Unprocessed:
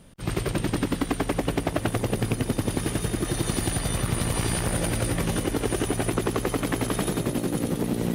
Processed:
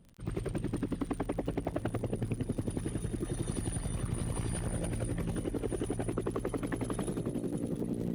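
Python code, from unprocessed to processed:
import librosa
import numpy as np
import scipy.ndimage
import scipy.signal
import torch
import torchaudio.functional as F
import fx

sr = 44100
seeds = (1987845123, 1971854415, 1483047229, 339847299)

y = fx.envelope_sharpen(x, sr, power=1.5)
y = fx.dmg_crackle(y, sr, seeds[0], per_s=54.0, level_db=-33.0)
y = F.gain(torch.from_numpy(y), -8.5).numpy()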